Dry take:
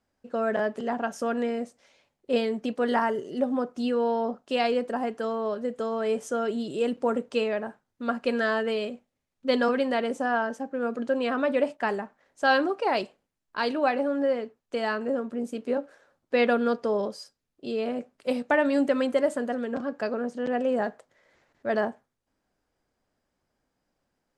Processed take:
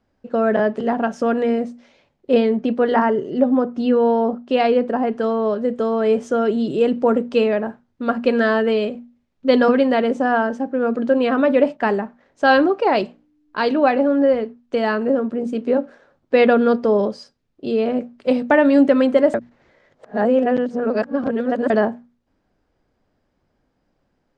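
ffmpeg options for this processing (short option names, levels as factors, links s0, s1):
-filter_complex "[0:a]asettb=1/sr,asplit=3[s0][s1][s2];[s0]atrim=end=2.344[s3];[s1]atrim=start=2.34:end=5.13,asetpts=PTS-STARTPTS,afade=t=in:d=0.004:c=qsin,afade=t=out:st=2.786:d=0.004:c=qsin,lowpass=f=3800:p=1[s4];[s2]atrim=start=5.126[s5];[s3][s4]acrossfade=d=0.004:c1=hsin:c2=qsin[s6];[s6][s5]acrossfade=d=0.004:c1=qsin:c2=hsin,asettb=1/sr,asplit=3[s7][s8][s9];[s7]atrim=end=12.564[s10];[s8]atrim=start=12.56:end=14.33,asetpts=PTS-STARTPTS,afade=t=in:d=0.004:c=qsin,afade=t=out:st=1.766:d=0.004:c=qsin,aeval=exprs='val(0)+0.00158*(sin(2*PI*60*n/s)+sin(2*PI*2*60*n/s)/2+sin(2*PI*3*60*n/s)/3+sin(2*PI*4*60*n/s)/4+sin(2*PI*5*60*n/s)/5)':c=same[s11];[s9]atrim=start=14.326[s12];[s10][s11]acrossfade=d=0.004:c1=hsin:c2=qsin[s13];[s13][s12]acrossfade=d=0.004:c1=qsin:c2=hsin,asplit=3[s14][s15][s16];[s14]atrim=end=19.342[s17];[s15]atrim=start=19.338:end=21.702,asetpts=PTS-STARTPTS,areverse[s18];[s16]atrim=start=21.698[s19];[s17][s18]acrossfade=d=0.004:c1=hsin:c2=hsin[s20];[s20][s19]acrossfade=d=0.004:c1=hsin:c2=hsin,lowpass=4900,lowshelf=f=490:g=7.5,bandreject=f=60:t=h:w=6,bandreject=f=120:t=h:w=6,bandreject=f=180:t=h:w=6,bandreject=f=240:t=h:w=6,volume=1.88"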